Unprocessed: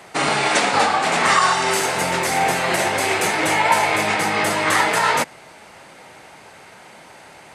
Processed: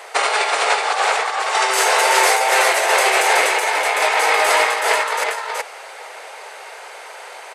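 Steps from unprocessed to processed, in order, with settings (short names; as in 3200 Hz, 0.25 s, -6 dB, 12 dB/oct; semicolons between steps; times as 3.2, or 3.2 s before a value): elliptic high-pass 440 Hz, stop band 70 dB; negative-ratio compressor -22 dBFS, ratio -0.5; on a send: echo 0.374 s -3.5 dB; on the sum: gain +4 dB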